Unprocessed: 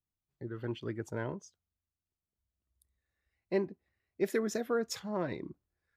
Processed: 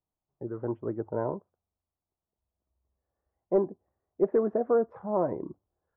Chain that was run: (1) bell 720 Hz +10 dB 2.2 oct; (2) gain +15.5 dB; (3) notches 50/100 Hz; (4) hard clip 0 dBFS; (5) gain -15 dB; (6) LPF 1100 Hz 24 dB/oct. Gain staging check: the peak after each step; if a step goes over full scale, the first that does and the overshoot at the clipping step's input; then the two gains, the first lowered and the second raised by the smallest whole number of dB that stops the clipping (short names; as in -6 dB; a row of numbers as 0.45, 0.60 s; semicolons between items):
-11.5, +4.0, +4.0, 0.0, -15.0, -14.0 dBFS; step 2, 4.0 dB; step 2 +11.5 dB, step 5 -11 dB